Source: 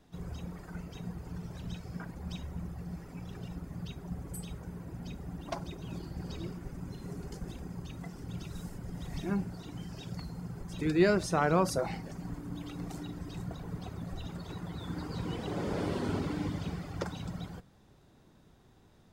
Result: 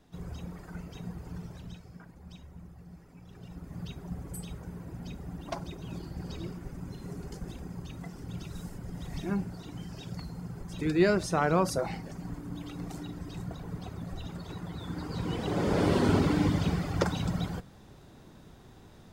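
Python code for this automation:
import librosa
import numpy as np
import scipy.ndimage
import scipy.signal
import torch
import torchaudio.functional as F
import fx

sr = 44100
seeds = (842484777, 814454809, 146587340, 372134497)

y = fx.gain(x, sr, db=fx.line((1.4, 0.5), (1.98, -8.5), (3.22, -8.5), (3.8, 1.0), (14.97, 1.0), (15.96, 8.5)))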